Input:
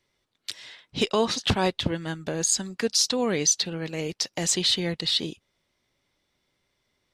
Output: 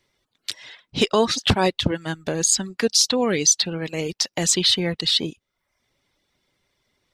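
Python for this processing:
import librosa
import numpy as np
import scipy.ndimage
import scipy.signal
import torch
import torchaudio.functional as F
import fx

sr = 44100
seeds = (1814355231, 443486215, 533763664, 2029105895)

y = fx.dereverb_blind(x, sr, rt60_s=0.61)
y = y * librosa.db_to_amplitude(5.0)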